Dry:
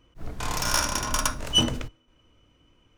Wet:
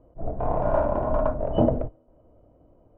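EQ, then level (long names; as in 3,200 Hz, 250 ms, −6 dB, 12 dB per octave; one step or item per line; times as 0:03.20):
low-pass with resonance 650 Hz, resonance Q 4.9
high-frequency loss of the air 320 metres
+4.0 dB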